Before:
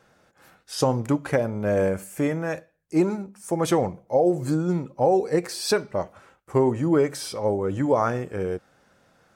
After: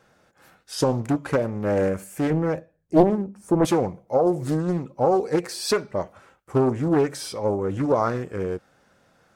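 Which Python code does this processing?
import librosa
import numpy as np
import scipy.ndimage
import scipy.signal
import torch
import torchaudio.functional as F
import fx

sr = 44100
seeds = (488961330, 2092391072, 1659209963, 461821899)

y = fx.tilt_shelf(x, sr, db=7.5, hz=970.0, at=(2.3, 3.65))
y = fx.doppler_dist(y, sr, depth_ms=0.91)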